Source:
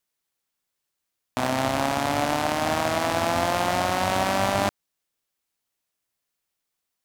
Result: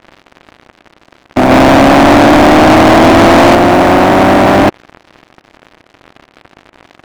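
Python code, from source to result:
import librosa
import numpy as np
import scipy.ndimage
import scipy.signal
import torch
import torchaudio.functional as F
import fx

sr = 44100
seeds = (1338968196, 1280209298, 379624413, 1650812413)

y = fx.bin_compress(x, sr, power=0.4)
y = fx.leveller(y, sr, passes=2, at=(1.5, 3.55))
y = scipy.signal.sosfilt(scipy.signal.butter(4, 2400.0, 'lowpass', fs=sr, output='sos'), y)
y = fx.peak_eq(y, sr, hz=340.0, db=10.5, octaves=0.94)
y = fx.leveller(y, sr, passes=5)
y = F.gain(torch.from_numpy(y), -1.5).numpy()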